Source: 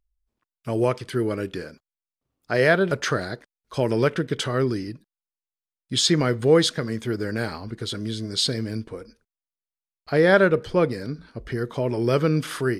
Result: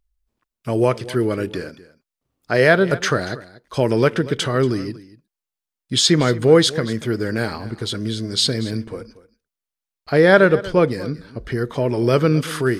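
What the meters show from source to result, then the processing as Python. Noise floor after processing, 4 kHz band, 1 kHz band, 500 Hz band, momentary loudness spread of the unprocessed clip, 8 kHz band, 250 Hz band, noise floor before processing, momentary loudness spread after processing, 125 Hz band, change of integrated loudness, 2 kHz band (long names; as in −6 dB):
below −85 dBFS, +4.5 dB, +4.5 dB, +4.5 dB, 15 LU, +4.5 dB, +4.5 dB, below −85 dBFS, 15 LU, +4.5 dB, +4.5 dB, +4.5 dB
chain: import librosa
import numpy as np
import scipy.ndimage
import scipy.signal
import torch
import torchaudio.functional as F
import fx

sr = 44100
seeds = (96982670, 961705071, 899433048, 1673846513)

y = x + 10.0 ** (-18.0 / 20.0) * np.pad(x, (int(235 * sr / 1000.0), 0))[:len(x)]
y = F.gain(torch.from_numpy(y), 4.5).numpy()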